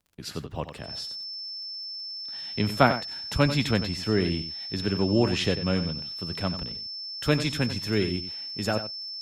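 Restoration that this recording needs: de-click; band-stop 5.3 kHz, Q 30; inverse comb 92 ms -11 dB

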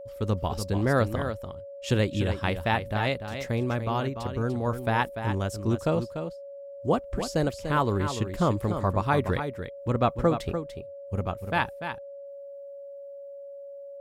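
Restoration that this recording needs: band-stop 560 Hz, Q 30; inverse comb 293 ms -8.5 dB

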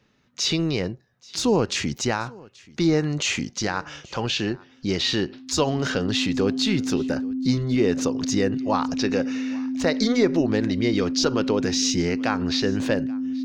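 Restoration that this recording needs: band-stop 260 Hz, Q 30; inverse comb 831 ms -23.5 dB

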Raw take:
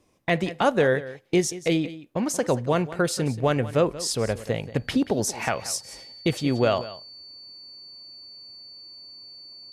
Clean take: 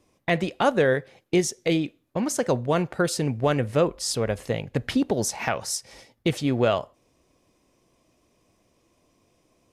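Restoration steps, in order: band-stop 4.5 kHz, Q 30; inverse comb 181 ms -16 dB

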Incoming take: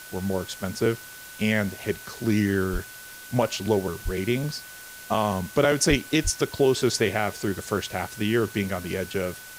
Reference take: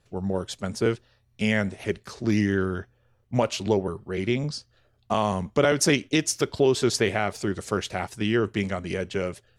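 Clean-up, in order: band-stop 1.5 kHz, Q 30; de-plosive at 2.72/4.04/5.89/6.23 s; noise reduction 21 dB, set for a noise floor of -43 dBFS

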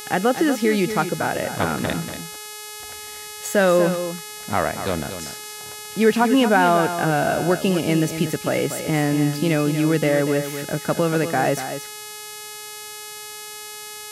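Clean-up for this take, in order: de-hum 422.7 Hz, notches 30; inverse comb 239 ms -9.5 dB

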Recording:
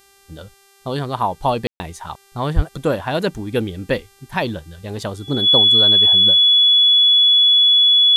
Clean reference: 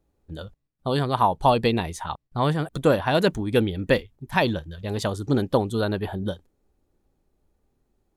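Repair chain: de-hum 394.7 Hz, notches 34; band-stop 3.4 kHz, Q 30; 2.55–2.67 s: high-pass 140 Hz 24 dB/octave; room tone fill 1.67–1.80 s

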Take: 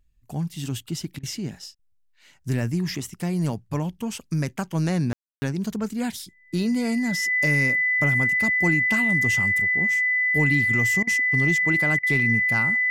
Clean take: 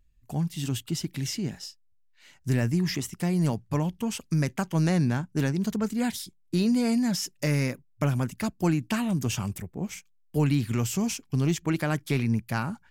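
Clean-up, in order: band-stop 2 kHz, Q 30; room tone fill 5.13–5.42 s; interpolate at 1.19/1.75/11.03/11.99 s, 41 ms

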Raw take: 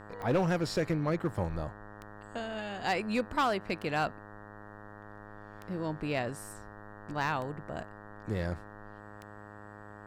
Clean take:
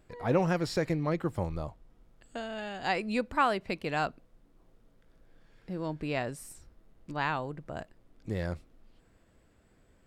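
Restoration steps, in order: clip repair -22 dBFS; de-click; de-hum 104 Hz, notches 18

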